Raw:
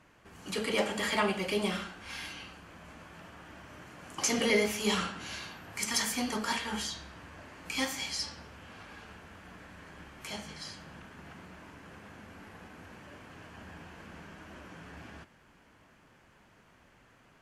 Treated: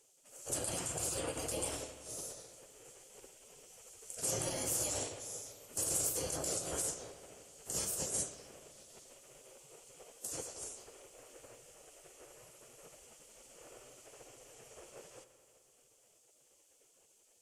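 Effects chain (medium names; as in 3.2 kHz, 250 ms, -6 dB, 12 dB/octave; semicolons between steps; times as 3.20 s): spectral gate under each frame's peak -15 dB weak; peak limiter -32 dBFS, peak gain reduction 9.5 dB; graphic EQ 125/500/1000/2000/4000/8000 Hz +6/+10/-7/-11/-10/+11 dB; bucket-brigade echo 86 ms, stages 2048, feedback 79%, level -14.5 dB; trim +4.5 dB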